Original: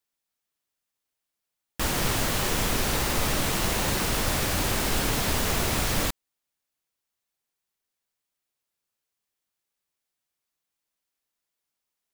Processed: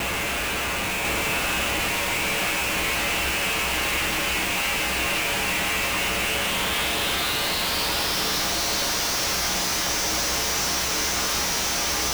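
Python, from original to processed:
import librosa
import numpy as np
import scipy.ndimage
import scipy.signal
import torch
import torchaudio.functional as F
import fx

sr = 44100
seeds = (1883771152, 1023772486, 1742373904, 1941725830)

p1 = fx.bin_compress(x, sr, power=0.2)
p2 = fx.low_shelf(p1, sr, hz=340.0, db=-9.5)
p3 = fx.notch(p2, sr, hz=1800.0, q=29.0)
p4 = fx.over_compress(p3, sr, threshold_db=-30.0, ratio=-1.0)
p5 = p3 + (p4 * 10.0 ** (-2.5 / 20.0))
p6 = fx.filter_sweep_lowpass(p5, sr, from_hz=2600.0, to_hz=5900.0, start_s=6.0, end_s=8.51, q=4.8)
p7 = fx.comb_fb(p6, sr, f0_hz=63.0, decay_s=0.66, harmonics='odd', damping=0.0, mix_pct=90)
p8 = fx.schmitt(p7, sr, flips_db=-42.0)
p9 = p8 + fx.echo_single(p8, sr, ms=1043, db=-3.0, dry=0)
y = p9 * 10.0 ** (7.0 / 20.0)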